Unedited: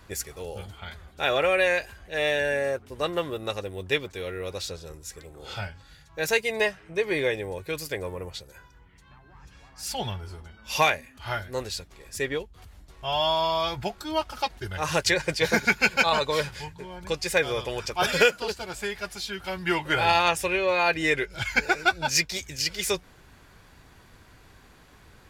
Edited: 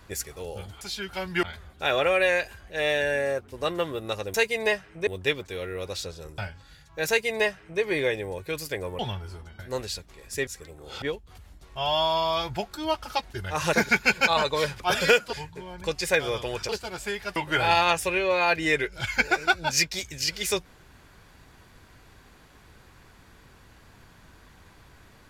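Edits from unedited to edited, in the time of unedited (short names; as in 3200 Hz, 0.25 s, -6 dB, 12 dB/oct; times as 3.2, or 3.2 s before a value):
5.03–5.58 move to 12.29
6.28–7.01 copy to 3.72
8.19–9.98 cut
10.58–11.41 cut
15–15.49 cut
17.92–18.45 move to 16.56
19.12–19.74 move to 0.81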